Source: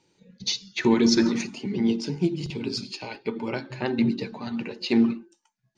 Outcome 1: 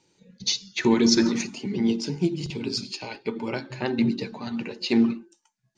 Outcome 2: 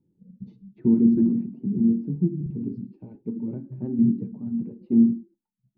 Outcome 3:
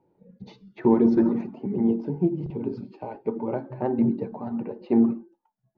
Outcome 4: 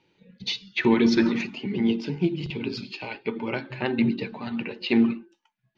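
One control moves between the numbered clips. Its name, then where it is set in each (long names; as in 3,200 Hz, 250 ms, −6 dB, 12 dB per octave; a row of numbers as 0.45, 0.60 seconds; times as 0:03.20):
low-pass with resonance, frequency: 7,900, 220, 750, 2,900 Hertz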